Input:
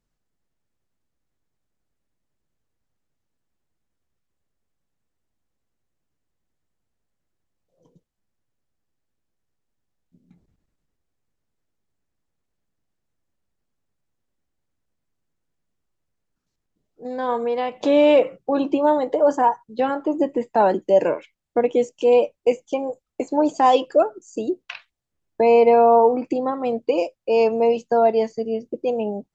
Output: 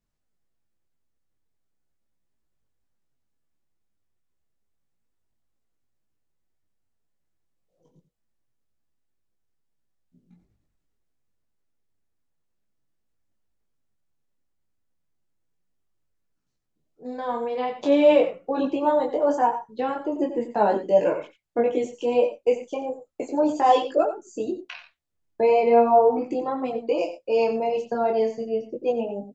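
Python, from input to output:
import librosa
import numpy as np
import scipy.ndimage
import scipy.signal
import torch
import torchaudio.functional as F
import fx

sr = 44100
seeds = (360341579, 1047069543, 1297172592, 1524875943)

p1 = x + fx.echo_single(x, sr, ms=90, db=-11.0, dry=0)
y = fx.detune_double(p1, sr, cents=13)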